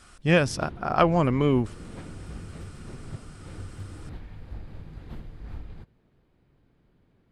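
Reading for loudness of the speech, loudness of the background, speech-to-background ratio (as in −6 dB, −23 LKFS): −23.5 LKFS, −42.5 LKFS, 19.0 dB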